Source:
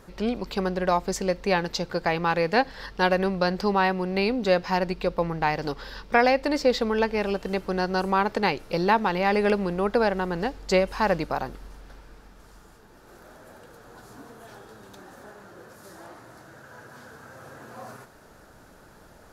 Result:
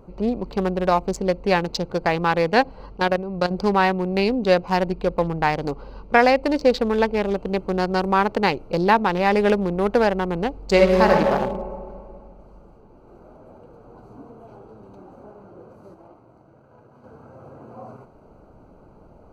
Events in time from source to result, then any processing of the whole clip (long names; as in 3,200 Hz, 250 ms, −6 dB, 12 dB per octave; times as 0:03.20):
0:02.97–0:03.51: output level in coarse steps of 11 dB
0:10.70–0:11.13: thrown reverb, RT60 2.2 s, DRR −1.5 dB
0:15.94–0:17.04: mu-law and A-law mismatch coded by A
whole clip: adaptive Wiener filter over 25 samples; level +4.5 dB